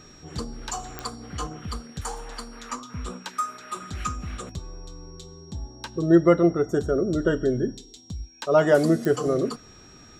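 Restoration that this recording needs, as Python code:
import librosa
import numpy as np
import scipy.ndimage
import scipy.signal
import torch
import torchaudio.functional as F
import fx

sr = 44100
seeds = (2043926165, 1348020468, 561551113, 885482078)

y = fx.fix_declick_ar(x, sr, threshold=10.0)
y = fx.notch(y, sr, hz=5600.0, q=30.0)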